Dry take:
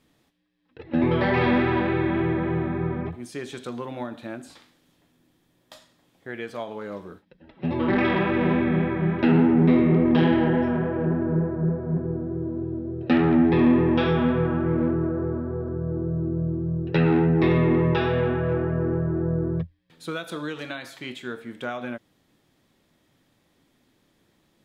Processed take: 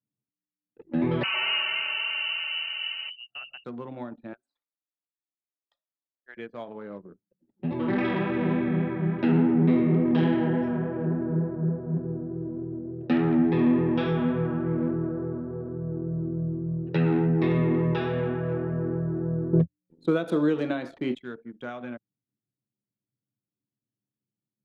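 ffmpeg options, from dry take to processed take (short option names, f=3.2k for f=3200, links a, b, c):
-filter_complex "[0:a]asettb=1/sr,asplit=3[a][b][c];[a]atrim=end=1.234[d];[b]atrim=start=1.23:end=3.65,asetpts=PTS-STARTPTS,afade=t=in:d=0.004:c=qsin,afade=t=out:st=2.416:d=0.004:c=qsin,lowpass=f=2.6k:t=q:w=0.5098,lowpass=f=2.6k:t=q:w=0.6013,lowpass=f=2.6k:t=q:w=0.9,lowpass=f=2.6k:t=q:w=2.563,afreqshift=-3100[e];[c]atrim=start=3.646[f];[d][e]acrossfade=d=0.004:c1=hsin:c2=qsin[g];[g][f]acrossfade=d=0.004:c1=qsin:c2=hsin,asettb=1/sr,asplit=3[h][i][j];[h]atrim=end=4.334[k];[i]atrim=start=4.33:end=6.37,asetpts=PTS-STARTPTS,afade=t=in:d=0.004:c=qsin,afade=t=out:st=2.036:d=0.004:c=qsin,highpass=840[l];[j]atrim=start=6.366[m];[k][l]acrossfade=d=0.004:c1=hsin:c2=qsin[n];[n][m]acrossfade=d=0.004:c1=qsin:c2=hsin,asettb=1/sr,asplit=3[o][p][q];[o]atrim=end=19.534[r];[p]atrim=start=19.53:end=21.15,asetpts=PTS-STARTPTS,afade=t=in:d=0.004:c=qsin,afade=t=out:st=1.616:d=0.004:c=qsin,equalizer=f=360:w=0.39:g=14.5[s];[q]atrim=start=21.146[t];[r][s]acrossfade=d=0.004:c1=hsin:c2=qsin[u];[u][t]acrossfade=d=0.004:c1=qsin:c2=hsin,highpass=f=120:w=0.5412,highpass=f=120:w=1.3066,anlmdn=1.58,lowshelf=f=280:g=6,volume=-6.5dB"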